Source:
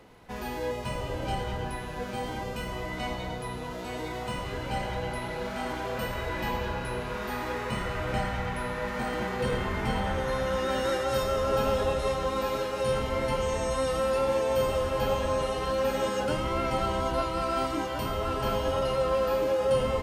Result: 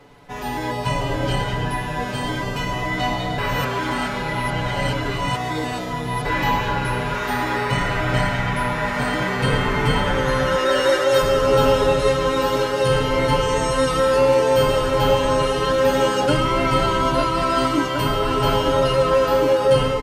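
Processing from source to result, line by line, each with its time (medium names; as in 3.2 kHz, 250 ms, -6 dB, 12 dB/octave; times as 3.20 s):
3.38–6.25 s: reverse
10.55–11.22 s: resonant low shelf 290 Hz -7.5 dB, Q 1.5
whole clip: treble shelf 12 kHz -6.5 dB; comb 7 ms, depth 100%; level rider gain up to 5.5 dB; trim +2.5 dB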